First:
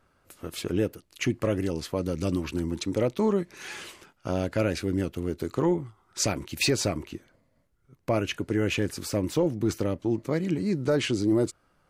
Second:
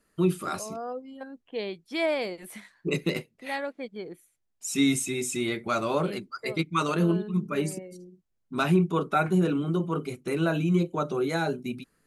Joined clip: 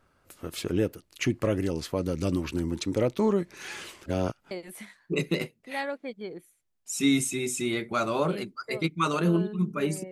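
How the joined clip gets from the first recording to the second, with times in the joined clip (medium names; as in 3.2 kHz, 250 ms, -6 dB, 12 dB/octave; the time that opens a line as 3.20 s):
first
4.06–4.51 s: reverse
4.51 s: go over to second from 2.26 s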